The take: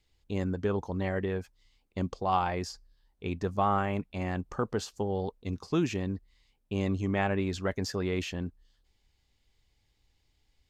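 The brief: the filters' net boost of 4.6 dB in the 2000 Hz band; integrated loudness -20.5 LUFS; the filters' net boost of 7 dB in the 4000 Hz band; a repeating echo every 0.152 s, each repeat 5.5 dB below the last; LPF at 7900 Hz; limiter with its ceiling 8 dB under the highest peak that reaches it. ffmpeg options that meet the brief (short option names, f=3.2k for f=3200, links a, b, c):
-af "lowpass=7.9k,equalizer=f=2k:t=o:g=3.5,equalizer=f=4k:t=o:g=8.5,alimiter=limit=-20.5dB:level=0:latency=1,aecho=1:1:152|304|456|608|760|912|1064:0.531|0.281|0.149|0.079|0.0419|0.0222|0.0118,volume=11dB"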